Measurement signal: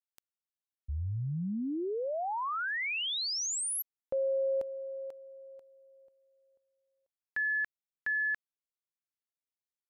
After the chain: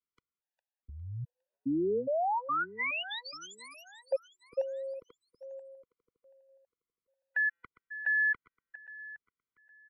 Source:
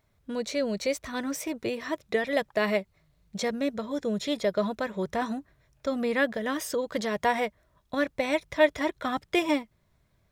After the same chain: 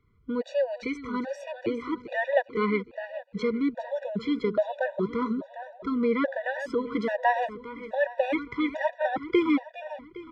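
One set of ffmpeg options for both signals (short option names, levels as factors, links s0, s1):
-filter_complex "[0:a]lowpass=2200,acrossover=split=140|1400[s0][s1][s2];[s0]acompressor=threshold=0.00158:ratio=6:release=67[s3];[s3][s1][s2]amix=inputs=3:normalize=0,aecho=1:1:407|814|1221|1628|2035:0.224|0.11|0.0538|0.0263|0.0129,afftfilt=real='re*gt(sin(2*PI*1.2*pts/sr)*(1-2*mod(floor(b*sr/1024/490),2)),0)':imag='im*gt(sin(2*PI*1.2*pts/sr)*(1-2*mod(floor(b*sr/1024/490),2)),0)':win_size=1024:overlap=0.75,volume=1.68"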